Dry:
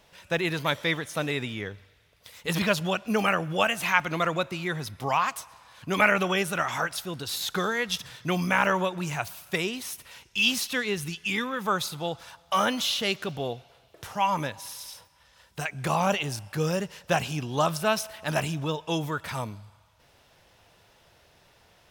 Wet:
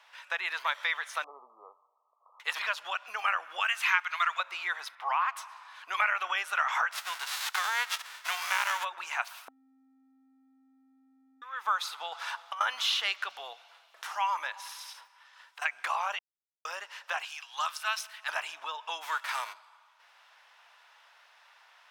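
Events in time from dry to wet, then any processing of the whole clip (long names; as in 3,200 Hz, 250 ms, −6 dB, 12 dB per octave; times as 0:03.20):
0:01.24–0:02.40: linear-phase brick-wall band-pass 180–1,300 Hz
0:03.60–0:04.40: high-pass filter 1,300 Hz
0:04.95–0:05.37: three-way crossover with the lows and the highs turned down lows −14 dB, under 450 Hz, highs −14 dB, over 3,300 Hz
0:06.91–0:08.83: spectral envelope flattened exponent 0.3
0:09.48–0:11.42: beep over 265 Hz −8 dBFS
0:12.12–0:12.61: compressor whose output falls as the input rises −32 dBFS, ratio −0.5
0:13.30–0:14.39: bass and treble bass +7 dB, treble +5 dB
0:14.92–0:15.62: downward compressor, threshold −42 dBFS
0:16.19–0:16.65: silence
0:17.25–0:18.29: guitar amp tone stack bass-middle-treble 10-0-10
0:19.01–0:19.52: spectral envelope flattened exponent 0.6
whole clip: low-pass filter 1,300 Hz 6 dB per octave; downward compressor 5 to 1, threshold −30 dBFS; high-pass filter 1,000 Hz 24 dB per octave; level +9 dB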